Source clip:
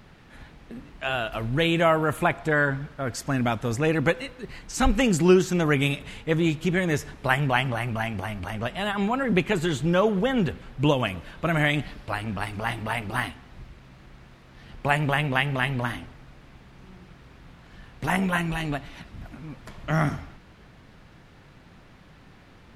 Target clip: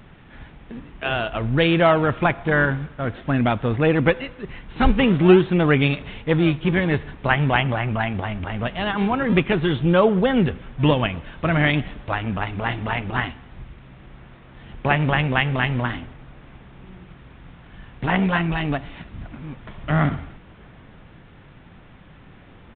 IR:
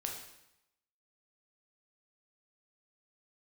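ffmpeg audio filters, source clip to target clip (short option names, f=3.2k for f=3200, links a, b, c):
-filter_complex "[0:a]asplit=2[a][b];[b]acrusher=samples=39:mix=1:aa=0.000001:lfo=1:lforange=62.4:lforate=0.47,volume=-10.5dB[c];[a][c]amix=inputs=2:normalize=0,aresample=8000,aresample=44100,volume=3dB"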